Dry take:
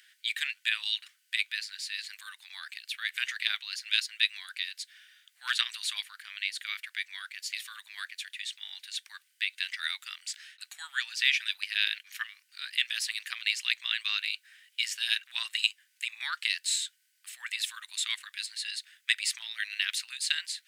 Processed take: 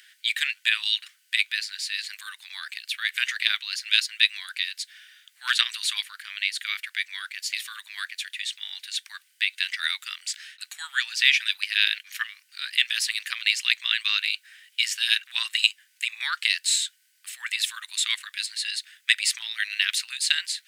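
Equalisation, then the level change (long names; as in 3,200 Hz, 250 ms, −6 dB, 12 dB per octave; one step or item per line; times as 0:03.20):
high-pass filter 830 Hz 12 dB per octave
+6.5 dB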